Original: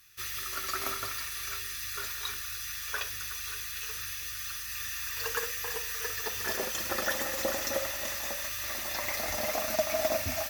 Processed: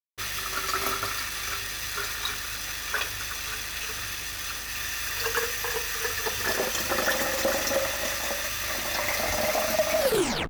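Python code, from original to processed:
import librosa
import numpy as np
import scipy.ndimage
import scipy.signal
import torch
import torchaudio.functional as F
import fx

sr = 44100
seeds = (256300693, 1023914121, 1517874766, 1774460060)

y = fx.tape_stop_end(x, sr, length_s=0.51)
y = fx.backlash(y, sr, play_db=-34.5)
y = fx.leveller(y, sr, passes=2)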